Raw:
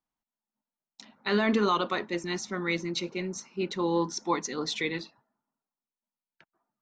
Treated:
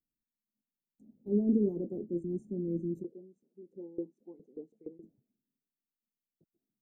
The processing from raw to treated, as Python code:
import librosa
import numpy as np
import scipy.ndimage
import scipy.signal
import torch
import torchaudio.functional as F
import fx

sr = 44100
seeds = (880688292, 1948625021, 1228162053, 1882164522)

y = scipy.signal.sosfilt(scipy.signal.cheby2(4, 60, [1100.0, 5200.0], 'bandstop', fs=sr, output='sos'), x)
y = fx.filter_lfo_bandpass(y, sr, shape='saw_up', hz=fx.line((3.02, 2.3), (5.02, 8.2)), low_hz=390.0, high_hz=2600.0, q=2.5, at=(3.02, 5.02), fade=0.02)